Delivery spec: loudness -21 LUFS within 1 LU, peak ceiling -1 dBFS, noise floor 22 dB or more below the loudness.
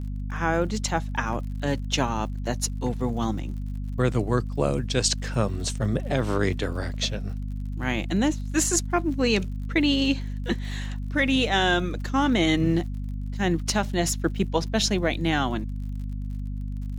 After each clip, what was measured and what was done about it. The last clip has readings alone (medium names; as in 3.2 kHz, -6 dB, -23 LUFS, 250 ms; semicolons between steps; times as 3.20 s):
tick rate 53 per s; hum 50 Hz; highest harmonic 250 Hz; hum level -28 dBFS; loudness -26.0 LUFS; peak level -8.0 dBFS; loudness target -21.0 LUFS
-> de-click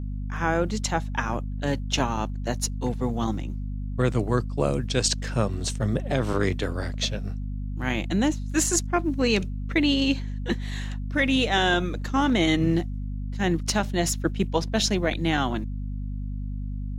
tick rate 0.059 per s; hum 50 Hz; highest harmonic 250 Hz; hum level -28 dBFS
-> hum notches 50/100/150/200/250 Hz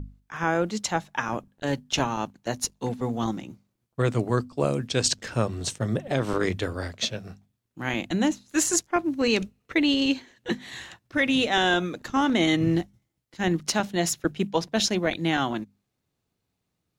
hum not found; loudness -26.0 LUFS; peak level -9.5 dBFS; loudness target -21.0 LUFS
-> trim +5 dB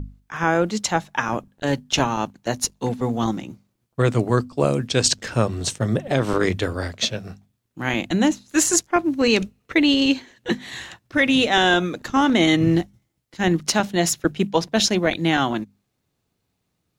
loudness -21.0 LUFS; peak level -4.5 dBFS; noise floor -75 dBFS